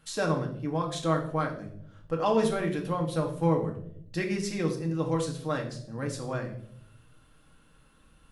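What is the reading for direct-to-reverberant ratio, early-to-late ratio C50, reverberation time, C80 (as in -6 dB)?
1.5 dB, 9.0 dB, 0.65 s, 12.0 dB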